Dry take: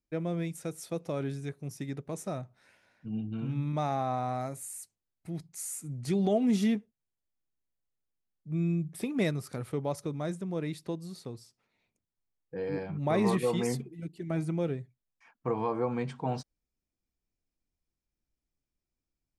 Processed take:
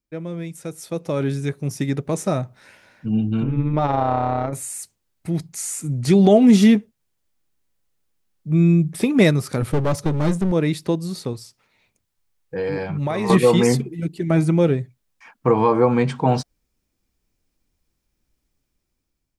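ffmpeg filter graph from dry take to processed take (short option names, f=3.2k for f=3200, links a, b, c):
-filter_complex "[0:a]asettb=1/sr,asplit=3[a][b][c];[a]atrim=end=3.434[d];[b]atrim=start=3.43:end=4.53,asetpts=PTS-STARTPTS,afade=t=in:d=0.004:c=qsin,afade=t=out:st=1.096:d=0.004:c=qsin,bass=f=250:g=-1,treble=f=4k:g=-8,adynamicsmooth=sensitivity=4:basefreq=2.4k,tremolo=f=160:d=0.621[e];[c]atrim=start=4.526[f];[d][e]acrossfade=d=0.004:c1=hsin:c2=qsin[g];[g][f]acrossfade=d=0.004:c1=qsin:c2=hsin,asettb=1/sr,asplit=3[h][i][j];[h]atrim=end=9.624[k];[i]atrim=start=9.62:end=10.52,asetpts=PTS-STARTPTS,afade=t=in:d=0.004:c=qsin,afade=t=out:st=0.896:d=0.004:c=qsin,lowshelf=f=240:g=7.5,aeval=exprs='clip(val(0),-1,0.0119)':c=same[l];[j]atrim=start=10.516[m];[k][l]acrossfade=d=0.004:c1=hsin:c2=qsin[n];[n][m]acrossfade=d=0.004:c1=qsin:c2=hsin,asettb=1/sr,asplit=3[o][p][q];[o]atrim=end=11.334[r];[p]atrim=start=11.33:end=13.3,asetpts=PTS-STARTPTS,afade=t=in:d=0.004:c=qsin,afade=t=out:st=1.966:d=0.004:c=qsin,equalizer=f=260:t=o:w=2:g=-6,acompressor=threshold=-33dB:ratio=10:attack=3.2:release=140:knee=1:detection=peak[s];[q]atrim=start=13.296[t];[r][s]acrossfade=d=0.004:c1=hsin:c2=qsin[u];[u][t]acrossfade=d=0.004:c1=qsin:c2=hsin,dynaudnorm=f=450:g=5:m=12dB,bandreject=f=700:w=17,acrossover=split=8300[v][w];[w]acompressor=threshold=-39dB:ratio=4:attack=1:release=60[x];[v][x]amix=inputs=2:normalize=0,volume=2.5dB"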